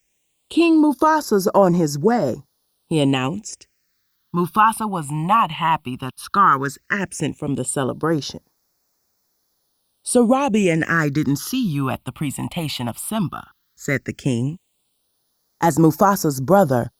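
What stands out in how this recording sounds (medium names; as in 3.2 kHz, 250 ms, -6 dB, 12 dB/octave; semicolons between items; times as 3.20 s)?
a quantiser's noise floor 12-bit, dither triangular; phasing stages 6, 0.14 Hz, lowest notch 420–2900 Hz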